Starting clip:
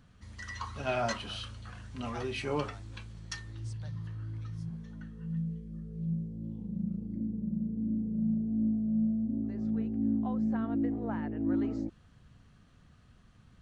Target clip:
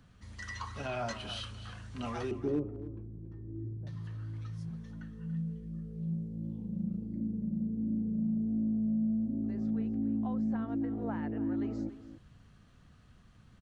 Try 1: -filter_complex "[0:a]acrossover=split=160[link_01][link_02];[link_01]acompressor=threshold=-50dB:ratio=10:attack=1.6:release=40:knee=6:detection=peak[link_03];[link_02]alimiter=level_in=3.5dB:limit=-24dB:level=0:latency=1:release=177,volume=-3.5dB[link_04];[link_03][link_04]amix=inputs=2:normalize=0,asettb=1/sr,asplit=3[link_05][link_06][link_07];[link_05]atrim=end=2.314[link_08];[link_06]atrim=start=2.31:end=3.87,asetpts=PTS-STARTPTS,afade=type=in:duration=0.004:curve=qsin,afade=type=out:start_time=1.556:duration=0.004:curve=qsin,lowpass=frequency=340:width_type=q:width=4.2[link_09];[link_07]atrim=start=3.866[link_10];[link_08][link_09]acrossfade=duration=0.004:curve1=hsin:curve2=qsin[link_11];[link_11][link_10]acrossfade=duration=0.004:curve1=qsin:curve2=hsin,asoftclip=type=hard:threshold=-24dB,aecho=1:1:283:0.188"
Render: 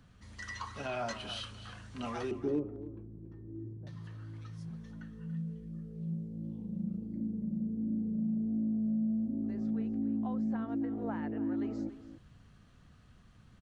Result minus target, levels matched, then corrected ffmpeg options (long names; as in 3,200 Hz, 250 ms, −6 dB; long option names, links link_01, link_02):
downward compressor: peak gain reduction +9 dB
-filter_complex "[0:a]acrossover=split=160[link_01][link_02];[link_01]acompressor=threshold=-40dB:ratio=10:attack=1.6:release=40:knee=6:detection=peak[link_03];[link_02]alimiter=level_in=3.5dB:limit=-24dB:level=0:latency=1:release=177,volume=-3.5dB[link_04];[link_03][link_04]amix=inputs=2:normalize=0,asettb=1/sr,asplit=3[link_05][link_06][link_07];[link_05]atrim=end=2.314[link_08];[link_06]atrim=start=2.31:end=3.87,asetpts=PTS-STARTPTS,afade=type=in:duration=0.004:curve=qsin,afade=type=out:start_time=1.556:duration=0.004:curve=qsin,lowpass=frequency=340:width_type=q:width=4.2[link_09];[link_07]atrim=start=3.866[link_10];[link_08][link_09]acrossfade=duration=0.004:curve1=hsin:curve2=qsin[link_11];[link_11][link_10]acrossfade=duration=0.004:curve1=qsin:curve2=hsin,asoftclip=type=hard:threshold=-24dB,aecho=1:1:283:0.188"